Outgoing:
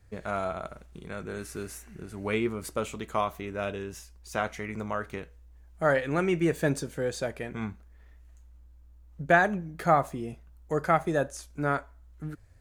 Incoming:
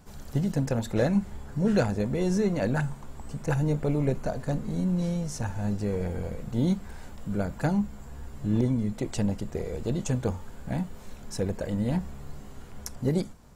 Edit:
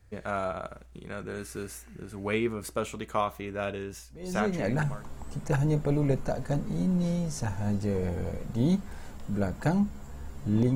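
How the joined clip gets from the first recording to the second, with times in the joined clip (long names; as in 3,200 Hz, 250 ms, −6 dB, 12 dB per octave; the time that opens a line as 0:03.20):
outgoing
0:04.60: continue with incoming from 0:02.58, crossfade 1.02 s equal-power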